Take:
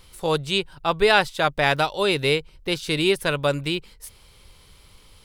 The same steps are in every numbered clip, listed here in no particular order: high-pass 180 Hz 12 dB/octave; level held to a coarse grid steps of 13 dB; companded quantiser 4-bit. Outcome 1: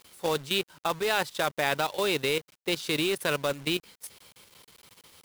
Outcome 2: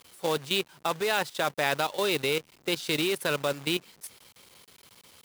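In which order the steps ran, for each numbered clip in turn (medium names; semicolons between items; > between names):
level held to a coarse grid > high-pass > companded quantiser; level held to a coarse grid > companded quantiser > high-pass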